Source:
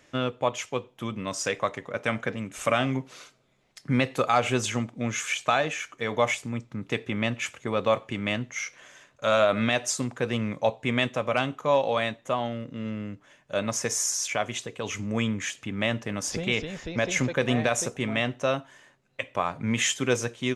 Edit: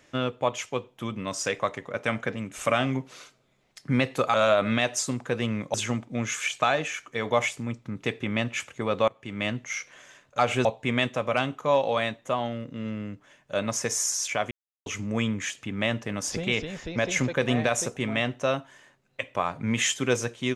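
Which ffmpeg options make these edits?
ffmpeg -i in.wav -filter_complex "[0:a]asplit=8[link_01][link_02][link_03][link_04][link_05][link_06][link_07][link_08];[link_01]atrim=end=4.342[link_09];[link_02]atrim=start=9.248:end=10.652[link_10];[link_03]atrim=start=4.598:end=7.94,asetpts=PTS-STARTPTS,afade=type=out:start_time=3.338:duration=0.004:curve=hsin:silence=0.0841395[link_11];[link_04]atrim=start=7.94:end=9.252,asetpts=PTS-STARTPTS,afade=type=in:duration=0.41:silence=0.0841395[link_12];[link_05]atrim=start=4.338:end=4.602[link_13];[link_06]atrim=start=10.648:end=14.51,asetpts=PTS-STARTPTS,afade=type=out:start_time=3.858:duration=0.004:curve=hsin[link_14];[link_07]atrim=start=14.51:end=14.86,asetpts=PTS-STARTPTS,volume=0[link_15];[link_08]atrim=start=14.86,asetpts=PTS-STARTPTS,afade=type=in:duration=0.004:curve=hsin[link_16];[link_09][link_10]acrossfade=duration=0.004:curve1=hsin:curve2=hsin[link_17];[link_11][link_12]concat=n=2:v=0:a=1[link_18];[link_17][link_18]acrossfade=duration=0.004:curve1=hsin:curve2=hsin[link_19];[link_19][link_13]acrossfade=duration=0.004:curve1=hsin:curve2=hsin[link_20];[link_14][link_15][link_16]concat=n=3:v=0:a=1[link_21];[link_20][link_21]acrossfade=duration=0.004:curve1=hsin:curve2=hsin" out.wav

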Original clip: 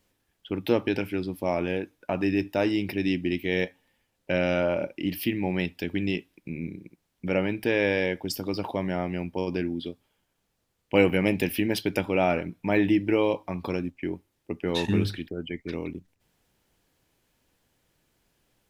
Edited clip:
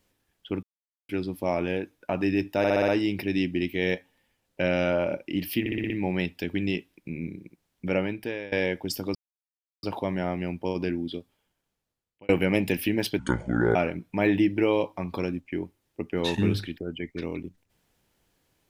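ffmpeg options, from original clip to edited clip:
ffmpeg -i in.wav -filter_complex "[0:a]asplit=18[link_01][link_02][link_03][link_04][link_05][link_06][link_07][link_08][link_09][link_10][link_11][link_12][link_13][link_14][link_15][link_16][link_17][link_18];[link_01]atrim=end=0.63,asetpts=PTS-STARTPTS,afade=type=out:start_time=0.626:duration=0.004:curve=hsin[link_19];[link_02]atrim=start=0.63:end=1.09,asetpts=PTS-STARTPTS,volume=0[link_20];[link_03]atrim=start=1.09:end=2.642,asetpts=PTS-STARTPTS,afade=type=in:duration=0.004:curve=hsin[link_21];[link_04]atrim=start=2.578:end=2.642[link_22];[link_05]atrim=start=2.578:end=2.642[link_23];[link_06]atrim=start=2.578:end=2.642[link_24];[link_07]atrim=start=2.578:end=2.642[link_25];[link_08]atrim=start=2.578:end=5.362[link_26];[link_09]atrim=start=5.298:end=5.362[link_27];[link_10]atrim=start=5.298:end=5.362[link_28];[link_11]atrim=start=5.298:end=5.362[link_29];[link_12]atrim=start=5.298:end=5.362[link_30];[link_13]atrim=start=5.298:end=7.92,asetpts=PTS-STARTPTS,afade=type=out:start_time=2.032:duration=0.59:silence=0.0794328[link_31];[link_14]atrim=start=7.92:end=8.55,asetpts=PTS-STARTPTS,afade=type=in:duration=0.004:curve=hsin:silence=0.0794328,afade=type=out:start_time=0.626:duration=0.004:curve=hsin,apad=pad_dur=0.68[link_32];[link_15]atrim=start=8.55:end=11.01,asetpts=PTS-STARTPTS,afade=type=in:duration=0.004:curve=hsin,afade=type=out:start_time=1.34:duration=1.12[link_33];[link_16]atrim=start=11.01:end=11.914,asetpts=PTS-STARTPTS,afade=type=in:duration=0.004:curve=hsin[link_34];[link_17]atrim=start=11.91:end=12.26,asetpts=PTS-STARTPTS,asetrate=27342,aresample=44100,atrim=end_sample=24895,asetpts=PTS-STARTPTS[link_35];[link_18]atrim=start=12.256[link_36];[link_19][link_20][link_21]concat=n=3:v=0:a=1[link_37];[link_37][link_22]acrossfade=duration=0.004:curve1=hsin:curve2=hsin[link_38];[link_38][link_23]acrossfade=duration=0.004:curve1=hsin:curve2=hsin[link_39];[link_39][link_24]acrossfade=duration=0.004:curve1=hsin:curve2=hsin[link_40];[link_40][link_25]acrossfade=duration=0.004:curve1=hsin:curve2=hsin[link_41];[link_41][link_26]acrossfade=duration=0.004:curve1=hsin:curve2=hsin[link_42];[link_42][link_27]acrossfade=duration=0.004:curve1=hsin:curve2=hsin[link_43];[link_43][link_28]acrossfade=duration=0.004:curve1=hsin:curve2=hsin[link_44];[link_44][link_29]acrossfade=duration=0.004:curve1=hsin:curve2=hsin[link_45];[link_45][link_30]acrossfade=duration=0.004:curve1=hsin:curve2=hsin[link_46];[link_31][link_32][link_33][link_34]concat=n=4:v=0:a=1[link_47];[link_46][link_47]acrossfade=duration=0.004:curve1=hsin:curve2=hsin[link_48];[link_48][link_35]acrossfade=duration=0.004:curve1=hsin:curve2=hsin[link_49];[link_49][link_36]acrossfade=duration=0.004:curve1=hsin:curve2=hsin" out.wav

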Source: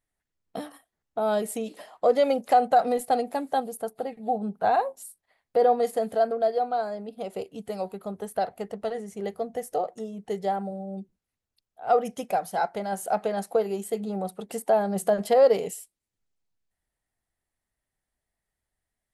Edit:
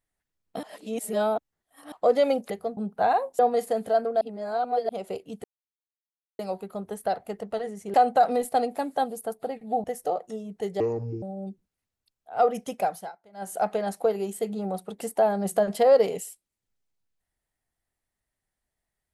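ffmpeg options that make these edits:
ffmpeg -i in.wav -filter_complex "[0:a]asplit=15[link_01][link_02][link_03][link_04][link_05][link_06][link_07][link_08][link_09][link_10][link_11][link_12][link_13][link_14][link_15];[link_01]atrim=end=0.632[link_16];[link_02]atrim=start=0.628:end=1.922,asetpts=PTS-STARTPTS,areverse[link_17];[link_03]atrim=start=1.918:end=2.502[link_18];[link_04]atrim=start=9.248:end=9.522[link_19];[link_05]atrim=start=4.398:end=5.022[link_20];[link_06]atrim=start=5.648:end=6.472[link_21];[link_07]atrim=start=6.468:end=7.152,asetpts=PTS-STARTPTS,areverse[link_22];[link_08]atrim=start=7.148:end=7.7,asetpts=PTS-STARTPTS,afade=type=out:start_time=0.548:duration=0.004:curve=hsin,apad=pad_dur=0.95[link_23];[link_09]atrim=start=7.7:end=9.252,asetpts=PTS-STARTPTS,afade=type=in:duration=0.004:curve=hsin[link_24];[link_10]atrim=start=2.498:end=4.402[link_25];[link_11]atrim=start=9.518:end=10.484[link_26];[link_12]atrim=start=10.48:end=10.73,asetpts=PTS-STARTPTS,asetrate=26019,aresample=44100,atrim=end_sample=18686,asetpts=PTS-STARTPTS[link_27];[link_13]atrim=start=10.726:end=12.63,asetpts=PTS-STARTPTS,afade=type=out:start_time=1.604:duration=0.3:curve=qsin:silence=0.0630957[link_28];[link_14]atrim=start=12.63:end=12.83,asetpts=PTS-STARTPTS,volume=-24dB[link_29];[link_15]atrim=start=12.83,asetpts=PTS-STARTPTS,afade=type=in:duration=0.3:curve=qsin:silence=0.0630957[link_30];[link_16][link_17]acrossfade=duration=0.004:curve1=hsin:curve2=hsin[link_31];[link_31][link_18]acrossfade=duration=0.004:curve1=hsin:curve2=hsin[link_32];[link_32][link_19]acrossfade=duration=0.004:curve1=hsin:curve2=hsin[link_33];[link_33][link_20]acrossfade=duration=0.004:curve1=hsin:curve2=hsin[link_34];[link_34][link_21]acrossfade=duration=0.004:curve1=hsin:curve2=hsin[link_35];[link_35][link_22]acrossfade=duration=0.004:curve1=hsin:curve2=hsin[link_36];[link_23][link_24]concat=n=2:v=0:a=1[link_37];[link_36][link_37]acrossfade=duration=0.004:curve1=hsin:curve2=hsin[link_38];[link_38][link_25]acrossfade=duration=0.004:curve1=hsin:curve2=hsin[link_39];[link_39][link_26]acrossfade=duration=0.004:curve1=hsin:curve2=hsin[link_40];[link_40][link_27]acrossfade=duration=0.004:curve1=hsin:curve2=hsin[link_41];[link_28][link_29][link_30]concat=n=3:v=0:a=1[link_42];[link_41][link_42]acrossfade=duration=0.004:curve1=hsin:curve2=hsin" out.wav

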